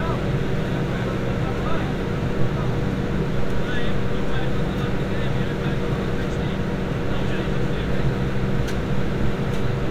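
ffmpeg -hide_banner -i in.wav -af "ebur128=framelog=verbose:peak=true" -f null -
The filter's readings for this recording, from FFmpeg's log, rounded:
Integrated loudness:
  I:         -24.5 LUFS
  Threshold: -34.5 LUFS
Loudness range:
  LRA:         0.4 LU
  Threshold: -44.6 LUFS
  LRA low:   -24.7 LUFS
  LRA high:  -24.3 LUFS
True peak:
  Peak:       -7.0 dBFS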